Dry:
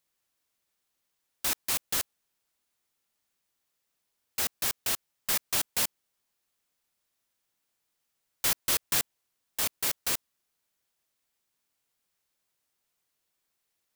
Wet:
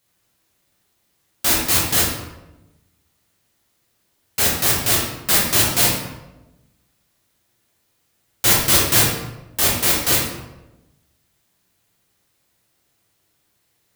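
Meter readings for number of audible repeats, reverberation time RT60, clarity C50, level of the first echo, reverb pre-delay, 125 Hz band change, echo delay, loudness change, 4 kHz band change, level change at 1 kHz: no echo, 1.0 s, 2.0 dB, no echo, 7 ms, +23.0 dB, no echo, +12.5 dB, +13.0 dB, +14.0 dB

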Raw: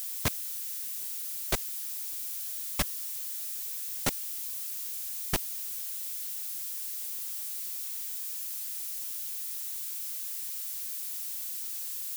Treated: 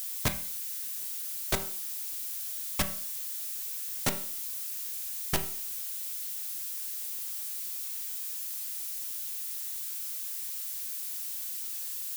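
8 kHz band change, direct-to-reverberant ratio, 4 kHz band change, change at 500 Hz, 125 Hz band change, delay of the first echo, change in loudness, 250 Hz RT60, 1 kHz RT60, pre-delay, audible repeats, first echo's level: 0.0 dB, 6.0 dB, +0.5 dB, +1.5 dB, +1.5 dB, no echo, 0.0 dB, 0.50 s, 0.50 s, 5 ms, no echo, no echo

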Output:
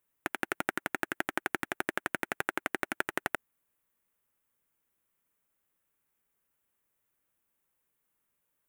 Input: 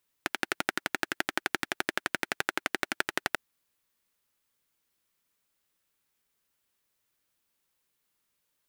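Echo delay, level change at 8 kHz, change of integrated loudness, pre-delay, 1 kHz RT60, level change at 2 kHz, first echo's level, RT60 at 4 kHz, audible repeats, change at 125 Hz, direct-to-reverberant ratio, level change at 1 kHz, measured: no echo, -5.0 dB, -2.5 dB, no reverb, no reverb, -2.5 dB, no echo, no reverb, no echo, 0.0 dB, no reverb, -1.0 dB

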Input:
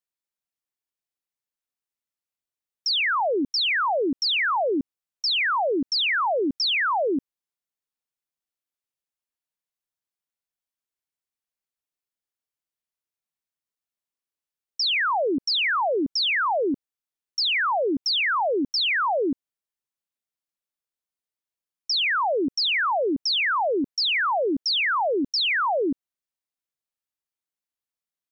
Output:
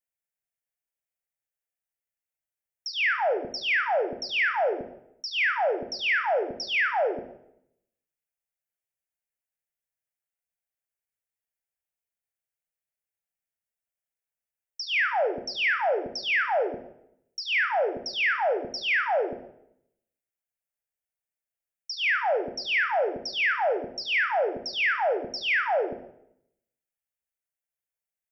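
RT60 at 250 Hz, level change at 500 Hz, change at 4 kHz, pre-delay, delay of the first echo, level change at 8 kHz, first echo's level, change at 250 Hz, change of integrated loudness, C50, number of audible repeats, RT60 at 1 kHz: 0.90 s, -1.5 dB, -9.0 dB, 18 ms, no echo, no reading, no echo, -14.0 dB, -3.0 dB, 10.0 dB, no echo, 0.70 s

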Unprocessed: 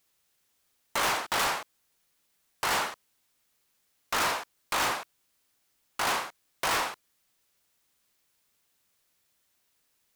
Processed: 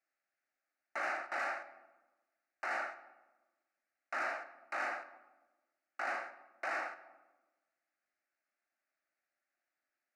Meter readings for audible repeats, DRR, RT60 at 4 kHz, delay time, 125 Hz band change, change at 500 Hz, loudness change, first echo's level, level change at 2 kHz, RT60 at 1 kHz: no echo, 11.5 dB, 0.70 s, no echo, under -30 dB, -8.0 dB, -10.0 dB, no echo, -6.5 dB, 1.1 s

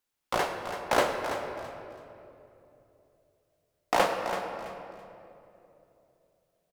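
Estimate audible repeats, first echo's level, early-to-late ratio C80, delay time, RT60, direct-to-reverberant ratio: 3, -10.0 dB, 4.5 dB, 331 ms, 3.0 s, 3.0 dB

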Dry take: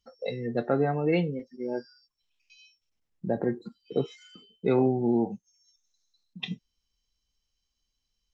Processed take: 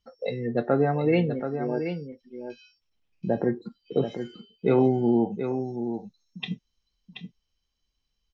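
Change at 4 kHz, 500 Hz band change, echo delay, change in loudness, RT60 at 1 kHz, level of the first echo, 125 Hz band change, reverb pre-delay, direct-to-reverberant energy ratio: +1.0 dB, +3.5 dB, 729 ms, +2.5 dB, no reverb, -8.5 dB, +3.5 dB, no reverb, no reverb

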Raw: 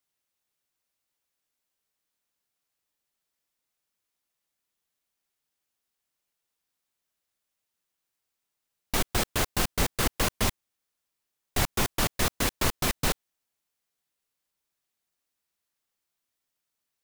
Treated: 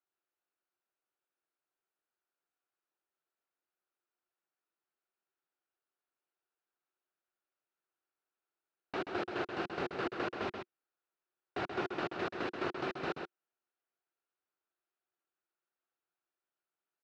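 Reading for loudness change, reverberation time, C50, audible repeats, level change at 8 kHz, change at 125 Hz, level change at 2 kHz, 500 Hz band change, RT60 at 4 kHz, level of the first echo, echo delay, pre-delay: -10.5 dB, no reverb, no reverb, 1, under -30 dB, -17.5 dB, -8.0 dB, -3.5 dB, no reverb, -6.5 dB, 131 ms, no reverb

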